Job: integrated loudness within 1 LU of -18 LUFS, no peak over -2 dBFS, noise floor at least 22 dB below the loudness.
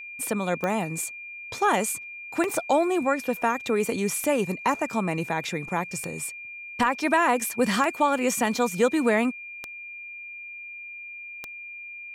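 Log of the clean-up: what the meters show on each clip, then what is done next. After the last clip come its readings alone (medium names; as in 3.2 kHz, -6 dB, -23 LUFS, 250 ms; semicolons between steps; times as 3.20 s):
clicks found 7; steady tone 2.4 kHz; tone level -37 dBFS; loudness -25.5 LUFS; peak level -10.0 dBFS; loudness target -18.0 LUFS
-> de-click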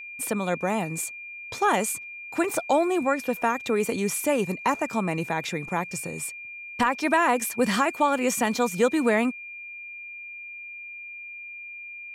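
clicks found 0; steady tone 2.4 kHz; tone level -37 dBFS
-> band-stop 2.4 kHz, Q 30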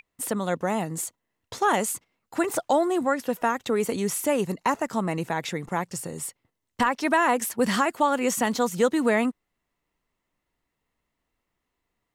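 steady tone not found; loudness -25.5 LUFS; peak level -10.5 dBFS; loudness target -18.0 LUFS
-> trim +7.5 dB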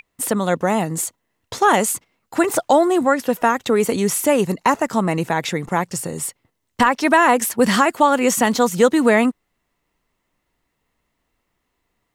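loudness -18.0 LUFS; peak level -3.0 dBFS; noise floor -74 dBFS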